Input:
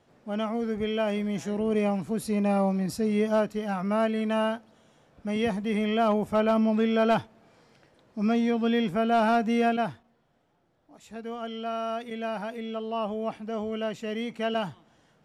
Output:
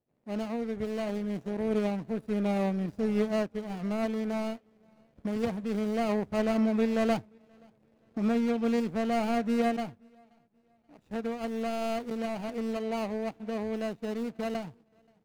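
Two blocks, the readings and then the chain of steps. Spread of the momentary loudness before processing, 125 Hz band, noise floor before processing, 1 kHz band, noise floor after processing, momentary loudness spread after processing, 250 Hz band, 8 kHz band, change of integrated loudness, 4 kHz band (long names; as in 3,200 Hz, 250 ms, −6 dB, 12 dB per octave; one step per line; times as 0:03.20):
10 LU, −3.5 dB, −66 dBFS, −6.5 dB, −68 dBFS, 8 LU, −2.5 dB, can't be measured, −3.5 dB, −6.5 dB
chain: running median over 41 samples
camcorder AGC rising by 8.6 dB per second
on a send: repeating echo 528 ms, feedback 46%, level −23 dB
on the sum: power curve on the samples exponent 1.4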